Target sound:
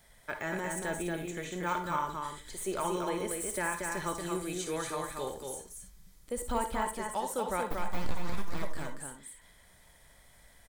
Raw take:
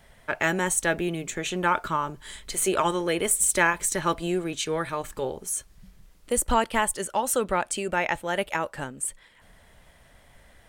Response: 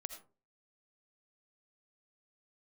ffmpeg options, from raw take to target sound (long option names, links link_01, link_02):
-filter_complex "[0:a]highshelf=frequency=3800:gain=11,asettb=1/sr,asplit=3[link_01][link_02][link_03];[link_01]atrim=end=7.674[link_04];[link_02]atrim=start=7.67:end=8.63,asetpts=PTS-STARTPTS,afade=type=in:duration=0.004:curve=qsin,afade=type=out:start_time=0.956:duration=0.004:curve=qsin,aeval=exprs='abs(val(0))':channel_layout=same[link_05];[link_03]atrim=start=8.626[link_06];[link_04][link_05]acrossfade=duration=0.004:curve1=hsin:curve2=qsin[link_07];[link_07][link_06]acrossfade=duration=0.004:curve1=qsin:curve2=hsin,bandreject=frequency=2800:width=7.8,deesser=0.85,asettb=1/sr,asplit=3[link_08][link_09][link_10];[link_08]atrim=end=4.154[link_11];[link_09]atrim=start=4.15:end=5.3,asetpts=PTS-STARTPTS,afade=type=in:duration=0.004:curve=qsin,afade=type=out:start_time=1.146:duration=0.004:curve=qsin,equalizer=frequency=9500:width_type=o:width=1.6:gain=8[link_12];[link_10]atrim=start=5.296[link_13];[link_11][link_12]acrossfade=duration=0.004:curve1=hsin:curve2=qsin[link_14];[link_14][link_13]acrossfade=duration=0.004:curve1=qsin:curve2=hsin,aecho=1:1:232:0.631[link_15];[1:a]atrim=start_sample=2205,asetrate=66150,aresample=44100[link_16];[link_15][link_16]afir=irnorm=-1:irlink=0,volume=-1.5dB"